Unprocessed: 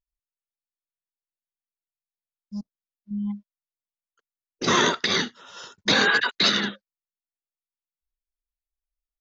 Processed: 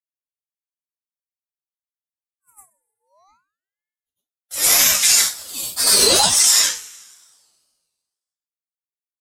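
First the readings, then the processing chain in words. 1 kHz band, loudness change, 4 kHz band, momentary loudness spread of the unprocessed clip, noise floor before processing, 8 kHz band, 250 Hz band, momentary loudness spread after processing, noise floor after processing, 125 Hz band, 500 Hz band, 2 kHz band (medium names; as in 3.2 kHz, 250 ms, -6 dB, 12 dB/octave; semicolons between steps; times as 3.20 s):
+0.5 dB, +9.5 dB, +6.5 dB, 19 LU, under -85 dBFS, no reading, -7.0 dB, 15 LU, under -85 dBFS, -4.5 dB, +2.0 dB, -2.0 dB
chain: frequency axis rescaled in octaves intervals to 120%; differentiator; gate -54 dBFS, range -19 dB; reverse echo 102 ms -11.5 dB; two-slope reverb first 0.26 s, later 1.6 s, from -26 dB, DRR -1.5 dB; vibrato 2.1 Hz 54 cents; loudness maximiser +19.5 dB; ring modulator with a swept carrier 1.3 kHz, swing 50%, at 0.51 Hz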